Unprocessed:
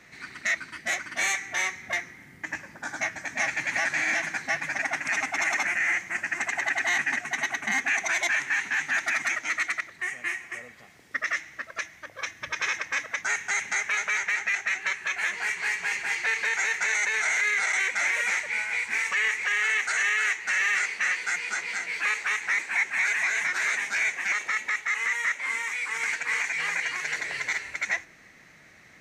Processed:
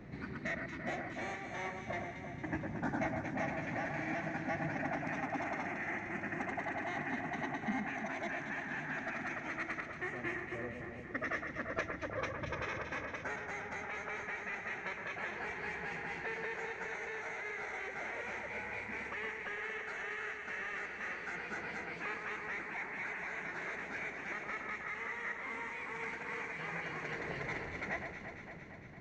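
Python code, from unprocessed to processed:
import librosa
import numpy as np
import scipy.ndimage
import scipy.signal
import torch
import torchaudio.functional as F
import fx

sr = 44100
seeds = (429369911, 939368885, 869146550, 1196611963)

y = fx.peak_eq(x, sr, hz=1900.0, db=-14.0, octaves=2.9)
y = fx.rider(y, sr, range_db=10, speed_s=0.5)
y = fx.spacing_loss(y, sr, db_at_10k=43)
y = fx.echo_alternate(y, sr, ms=114, hz=2100.0, feedback_pct=83, wet_db=-5)
y = F.gain(torch.from_numpy(y), 5.5).numpy()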